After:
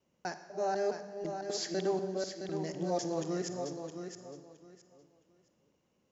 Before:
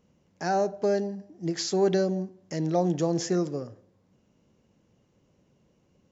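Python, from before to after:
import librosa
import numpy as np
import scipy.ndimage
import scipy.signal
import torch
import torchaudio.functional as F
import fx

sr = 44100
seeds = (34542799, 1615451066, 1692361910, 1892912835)

y = fx.local_reverse(x, sr, ms=249.0)
y = fx.low_shelf(y, sr, hz=260.0, db=-9.0)
y = fx.hum_notches(y, sr, base_hz=50, count=4)
y = fx.echo_feedback(y, sr, ms=666, feedback_pct=21, wet_db=-7.5)
y = fx.rev_schroeder(y, sr, rt60_s=1.2, comb_ms=38, drr_db=10.0)
y = F.gain(torch.from_numpy(y), -6.0).numpy()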